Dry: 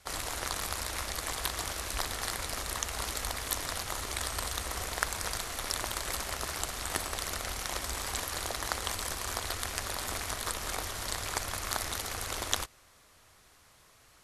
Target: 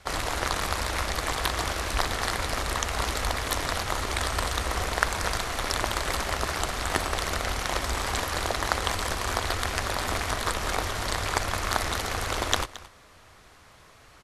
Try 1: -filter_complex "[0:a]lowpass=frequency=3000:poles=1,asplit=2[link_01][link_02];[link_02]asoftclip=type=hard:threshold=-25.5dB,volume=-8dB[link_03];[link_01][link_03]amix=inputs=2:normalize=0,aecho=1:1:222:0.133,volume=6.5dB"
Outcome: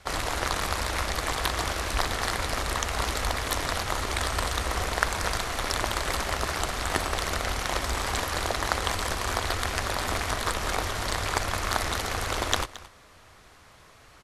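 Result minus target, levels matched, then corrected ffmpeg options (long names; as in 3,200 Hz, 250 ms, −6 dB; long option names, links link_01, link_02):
hard clipping: distortion +7 dB
-filter_complex "[0:a]lowpass=frequency=3000:poles=1,asplit=2[link_01][link_02];[link_02]asoftclip=type=hard:threshold=-18.5dB,volume=-8dB[link_03];[link_01][link_03]amix=inputs=2:normalize=0,aecho=1:1:222:0.133,volume=6.5dB"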